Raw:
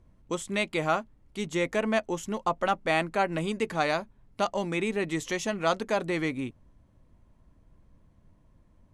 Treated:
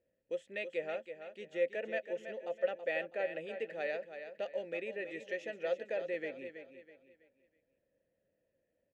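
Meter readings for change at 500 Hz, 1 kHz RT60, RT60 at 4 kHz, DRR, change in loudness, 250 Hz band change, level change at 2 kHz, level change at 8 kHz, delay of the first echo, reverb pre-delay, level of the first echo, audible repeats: -6.0 dB, none, none, none, -9.5 dB, -18.5 dB, -9.5 dB, under -25 dB, 0.326 s, none, -9.5 dB, 3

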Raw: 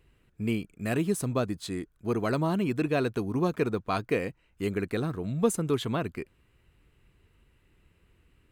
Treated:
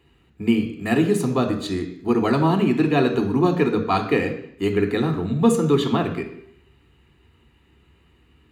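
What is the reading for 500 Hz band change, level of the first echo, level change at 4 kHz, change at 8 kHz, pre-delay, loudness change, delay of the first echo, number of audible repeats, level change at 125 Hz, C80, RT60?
+8.0 dB, none, +8.5 dB, +2.0 dB, 3 ms, +8.5 dB, none, none, +7.0 dB, 11.5 dB, 0.70 s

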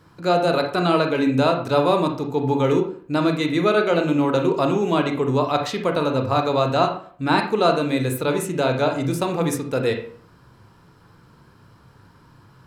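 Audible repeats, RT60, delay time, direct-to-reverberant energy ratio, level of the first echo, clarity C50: none, 0.50 s, none, 3.5 dB, none, 8.0 dB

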